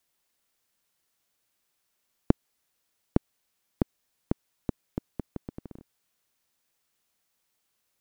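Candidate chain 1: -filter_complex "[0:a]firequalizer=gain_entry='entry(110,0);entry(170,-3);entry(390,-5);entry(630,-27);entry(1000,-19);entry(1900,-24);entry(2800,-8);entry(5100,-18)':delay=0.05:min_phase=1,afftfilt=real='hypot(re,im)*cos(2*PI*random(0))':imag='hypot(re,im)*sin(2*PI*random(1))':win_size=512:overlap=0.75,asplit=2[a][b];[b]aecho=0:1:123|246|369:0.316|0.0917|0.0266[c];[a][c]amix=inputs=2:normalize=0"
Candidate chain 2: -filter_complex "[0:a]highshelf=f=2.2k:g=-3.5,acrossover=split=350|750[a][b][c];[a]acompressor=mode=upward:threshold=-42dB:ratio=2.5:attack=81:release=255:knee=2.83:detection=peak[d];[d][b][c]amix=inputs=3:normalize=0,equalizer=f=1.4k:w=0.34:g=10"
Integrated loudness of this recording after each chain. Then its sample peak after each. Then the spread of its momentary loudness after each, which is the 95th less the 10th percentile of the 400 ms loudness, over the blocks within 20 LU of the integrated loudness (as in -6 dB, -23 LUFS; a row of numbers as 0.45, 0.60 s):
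-46.5, -33.0 LUFS; -18.5, -1.5 dBFS; 19, 12 LU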